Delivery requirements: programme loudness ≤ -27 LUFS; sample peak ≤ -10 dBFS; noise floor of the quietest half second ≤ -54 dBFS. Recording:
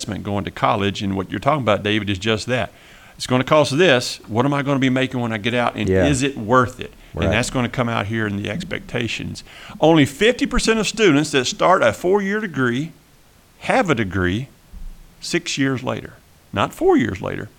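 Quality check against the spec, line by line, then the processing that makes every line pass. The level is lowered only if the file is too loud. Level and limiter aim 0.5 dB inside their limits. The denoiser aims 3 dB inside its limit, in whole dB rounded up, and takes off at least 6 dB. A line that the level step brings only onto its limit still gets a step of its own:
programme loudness -19.0 LUFS: fail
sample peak -3.0 dBFS: fail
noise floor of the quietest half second -51 dBFS: fail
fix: trim -8.5 dB

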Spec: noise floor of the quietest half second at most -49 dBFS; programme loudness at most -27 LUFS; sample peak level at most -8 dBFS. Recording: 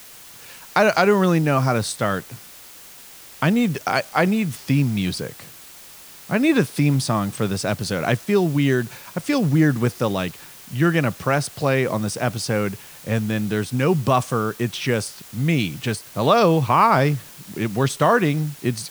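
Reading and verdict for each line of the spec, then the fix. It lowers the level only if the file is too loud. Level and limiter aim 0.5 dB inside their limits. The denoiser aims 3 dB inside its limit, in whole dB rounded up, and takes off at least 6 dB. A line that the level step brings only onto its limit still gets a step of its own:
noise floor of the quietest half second -43 dBFS: fail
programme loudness -21.0 LUFS: fail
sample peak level -4.0 dBFS: fail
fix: trim -6.5 dB

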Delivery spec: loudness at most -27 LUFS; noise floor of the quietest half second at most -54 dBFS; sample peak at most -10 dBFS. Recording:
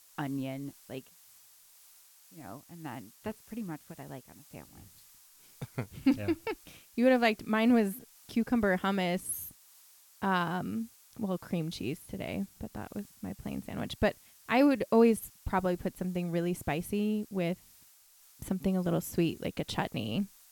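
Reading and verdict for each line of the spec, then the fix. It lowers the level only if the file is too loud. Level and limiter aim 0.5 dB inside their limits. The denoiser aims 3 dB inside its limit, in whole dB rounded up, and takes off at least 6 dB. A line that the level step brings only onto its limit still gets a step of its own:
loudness -32.0 LUFS: pass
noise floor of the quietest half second -60 dBFS: pass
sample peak -11.5 dBFS: pass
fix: none needed

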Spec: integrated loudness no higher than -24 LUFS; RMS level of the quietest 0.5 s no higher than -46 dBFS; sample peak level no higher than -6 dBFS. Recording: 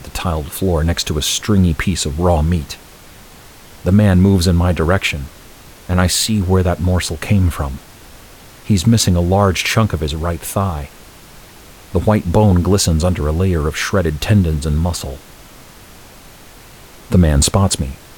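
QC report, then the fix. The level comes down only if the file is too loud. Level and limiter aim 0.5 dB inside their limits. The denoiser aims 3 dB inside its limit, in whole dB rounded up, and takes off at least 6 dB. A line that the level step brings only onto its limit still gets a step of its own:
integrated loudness -15.5 LUFS: fail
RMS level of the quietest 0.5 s -40 dBFS: fail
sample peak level -2.0 dBFS: fail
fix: trim -9 dB

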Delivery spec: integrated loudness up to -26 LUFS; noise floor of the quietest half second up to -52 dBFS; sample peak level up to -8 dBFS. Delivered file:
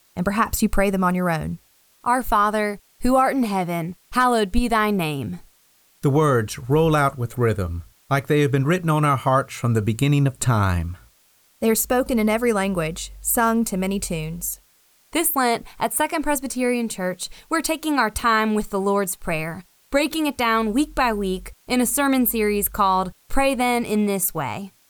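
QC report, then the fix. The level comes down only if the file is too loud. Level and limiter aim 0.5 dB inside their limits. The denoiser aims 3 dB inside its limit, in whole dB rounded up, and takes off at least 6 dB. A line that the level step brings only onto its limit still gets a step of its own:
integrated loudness -21.5 LUFS: fail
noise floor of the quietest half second -59 dBFS: pass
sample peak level -5.0 dBFS: fail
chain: trim -5 dB

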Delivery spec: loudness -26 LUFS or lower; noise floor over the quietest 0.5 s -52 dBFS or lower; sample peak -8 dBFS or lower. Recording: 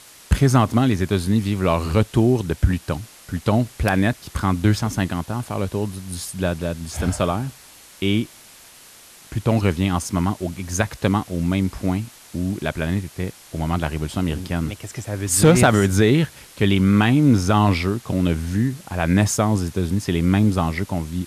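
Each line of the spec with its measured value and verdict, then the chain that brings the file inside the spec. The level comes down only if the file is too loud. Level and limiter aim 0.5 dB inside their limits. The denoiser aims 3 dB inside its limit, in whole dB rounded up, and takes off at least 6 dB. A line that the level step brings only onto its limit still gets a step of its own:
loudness -21.0 LUFS: fail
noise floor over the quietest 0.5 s -46 dBFS: fail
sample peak -5.5 dBFS: fail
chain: noise reduction 6 dB, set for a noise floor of -46 dBFS; trim -5.5 dB

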